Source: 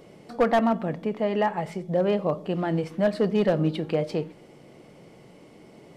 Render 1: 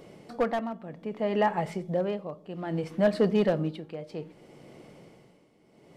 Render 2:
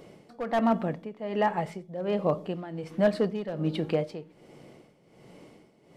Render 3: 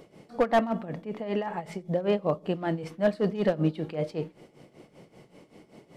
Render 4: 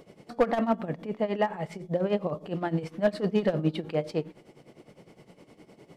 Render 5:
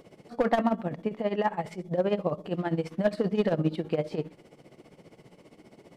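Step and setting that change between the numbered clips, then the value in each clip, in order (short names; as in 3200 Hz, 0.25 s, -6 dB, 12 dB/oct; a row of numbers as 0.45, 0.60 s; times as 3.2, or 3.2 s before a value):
tremolo, rate: 0.63, 1.3, 5.2, 9.8, 15 Hz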